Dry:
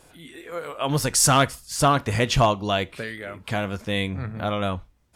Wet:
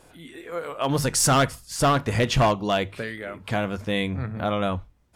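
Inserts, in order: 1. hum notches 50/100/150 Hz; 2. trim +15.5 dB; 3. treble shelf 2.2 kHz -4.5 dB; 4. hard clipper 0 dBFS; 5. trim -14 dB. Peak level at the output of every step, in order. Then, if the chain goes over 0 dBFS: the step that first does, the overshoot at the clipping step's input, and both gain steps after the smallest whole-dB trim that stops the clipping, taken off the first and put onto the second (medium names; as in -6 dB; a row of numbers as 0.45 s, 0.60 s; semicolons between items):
-8.0 dBFS, +7.5 dBFS, +7.0 dBFS, 0.0 dBFS, -14.0 dBFS; step 2, 7.0 dB; step 2 +8.5 dB, step 5 -7 dB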